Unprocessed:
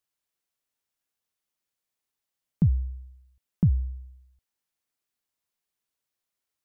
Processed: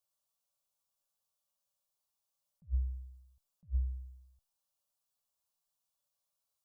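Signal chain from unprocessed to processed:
low-shelf EQ 73 Hz −5 dB
phaser with its sweep stopped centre 810 Hz, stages 4
tuned comb filter 570 Hz, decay 0.38 s, mix 80%
level that may rise only so fast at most 430 dB per second
level +13 dB

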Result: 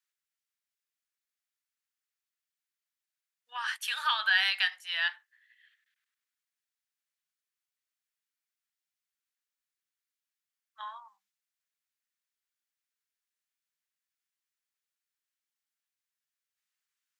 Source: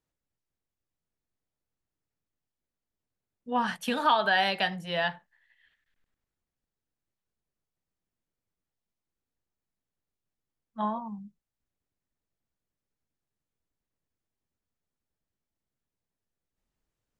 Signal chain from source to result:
high-pass filter 1,400 Hz 24 dB per octave
level +2.5 dB

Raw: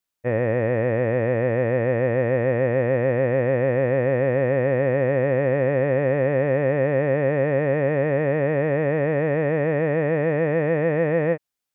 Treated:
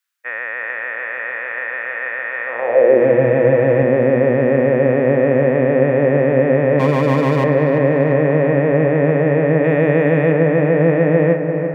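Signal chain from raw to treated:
0:06.79–0:07.44: lower of the sound and its delayed copy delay 6.4 ms
0:09.64–0:10.32: high-shelf EQ 2,900 Hz +12 dB
on a send: feedback echo with a low-pass in the loop 342 ms, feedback 76%, low-pass 3,000 Hz, level −8 dB
on the sum: high-pass filter sweep 1,500 Hz → 190 Hz, 0:02.43–0:03.18
0:03.00–0:03.83: comb filter 6.2 ms, depth 64%
level +4 dB

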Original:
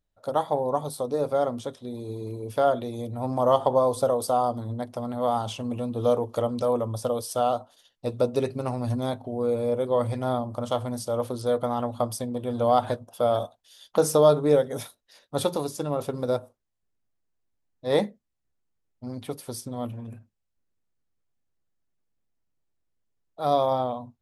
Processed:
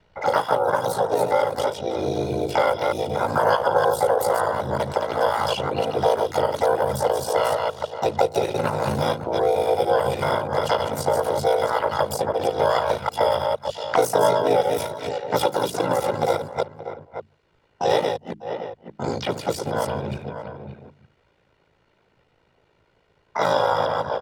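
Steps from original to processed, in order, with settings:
delay that plays each chunk backwards 154 ms, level −6 dB
mains-hum notches 60/120/180/240 Hz
in parallel at −1 dB: downward compressor 10 to 1, threshold −30 dBFS, peak gain reduction 17.5 dB
on the sum: dynamic equaliser 420 Hz, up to −6 dB, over −37 dBFS, Q 3.7
slap from a distant wall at 98 metres, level −19 dB
low-pass that shuts in the quiet parts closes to 2,000 Hz, open at −21 dBFS
high-pass filter 170 Hz 6 dB per octave
parametric band 2,800 Hz +5.5 dB 0.46 octaves
comb filter 2.1 ms, depth 73%
ring modulation 27 Hz
pitch-shifted copies added −3 semitones −14 dB, +7 semitones −5 dB
multiband upward and downward compressor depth 70%
level +2.5 dB

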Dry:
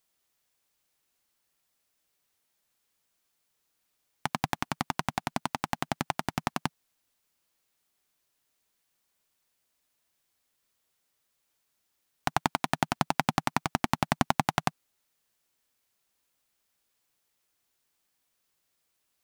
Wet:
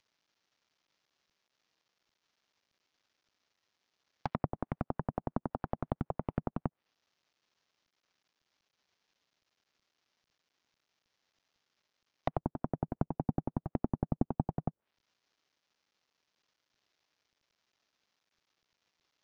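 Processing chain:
variable-slope delta modulation 32 kbit/s
treble cut that deepens with the level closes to 460 Hz, closed at −32 dBFS
level +1 dB

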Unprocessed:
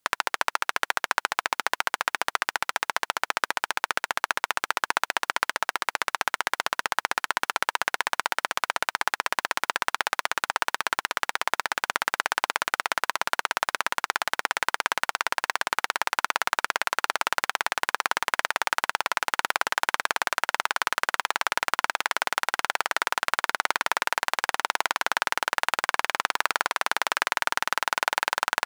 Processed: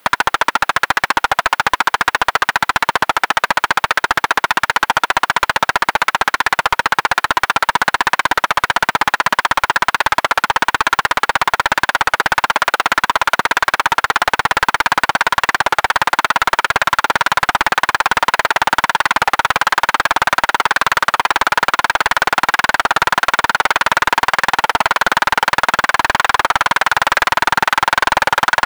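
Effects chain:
parametric band 6,700 Hz −14 dB 1.9 octaves
mid-hump overdrive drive 36 dB, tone 5,500 Hz, clips at −5.5 dBFS
wow of a warped record 33 1/3 rpm, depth 100 cents
level +4.5 dB

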